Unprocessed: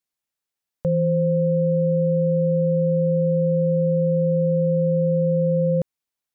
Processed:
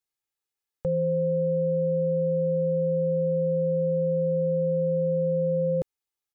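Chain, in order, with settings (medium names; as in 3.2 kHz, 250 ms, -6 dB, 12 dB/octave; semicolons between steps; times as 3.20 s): comb 2.4 ms, depth 56%; trim -4.5 dB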